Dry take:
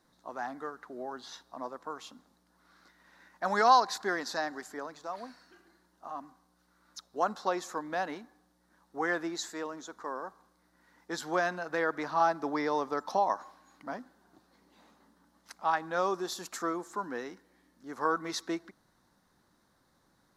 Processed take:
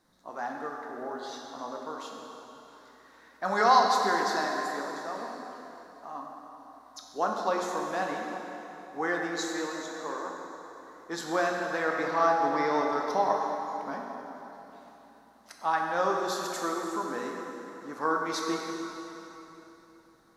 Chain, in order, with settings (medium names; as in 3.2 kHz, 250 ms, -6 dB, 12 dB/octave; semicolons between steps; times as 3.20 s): plate-style reverb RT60 3.5 s, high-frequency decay 0.8×, DRR -0.5 dB